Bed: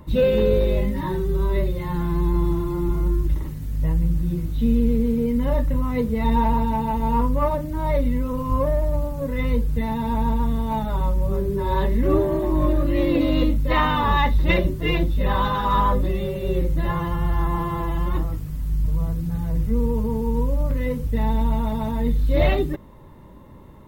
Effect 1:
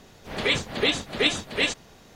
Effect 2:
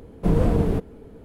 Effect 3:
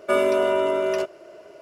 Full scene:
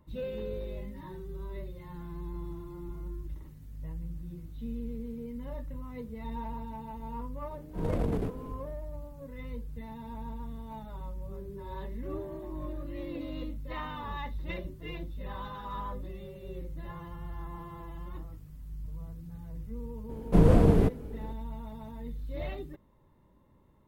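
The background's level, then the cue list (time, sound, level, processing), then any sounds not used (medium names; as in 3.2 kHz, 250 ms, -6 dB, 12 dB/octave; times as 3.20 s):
bed -18.5 dB
7.50 s: add 2 -12 dB + transient shaper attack -9 dB, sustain +12 dB
20.09 s: add 2 -0.5 dB
not used: 1, 3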